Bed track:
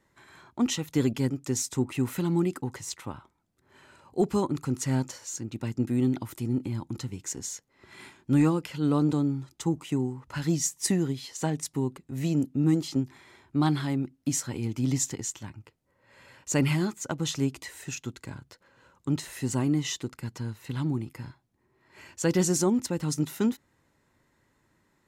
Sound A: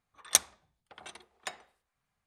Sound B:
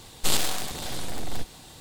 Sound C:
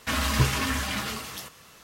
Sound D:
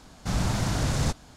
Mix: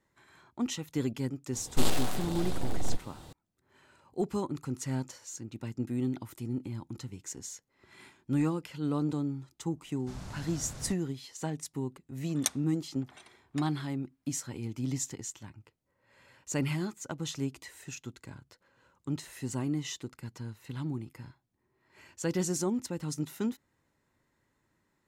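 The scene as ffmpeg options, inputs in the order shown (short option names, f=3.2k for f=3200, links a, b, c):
-filter_complex "[0:a]volume=-6.5dB[a];[2:a]tiltshelf=f=1.3k:g=5.5,atrim=end=1.8,asetpts=PTS-STARTPTS,volume=-4.5dB,afade=t=in:d=0.004:c=hsin,afade=t=out:st=1.796:d=0.004:c=hsin,adelay=1530[b];[4:a]atrim=end=1.36,asetpts=PTS-STARTPTS,volume=-17.5dB,afade=t=in:d=0.004:c=hsin,afade=t=out:st=1.356:d=0.004:c=hsin,adelay=9810[c];[1:a]atrim=end=2.26,asetpts=PTS-STARTPTS,volume=-7.5dB,afade=t=in:d=0.004:c=hsin,afade=t=out:st=2.256:d=0.004:c=hsin,adelay=12110[d];[a][b][c][d]amix=inputs=4:normalize=0"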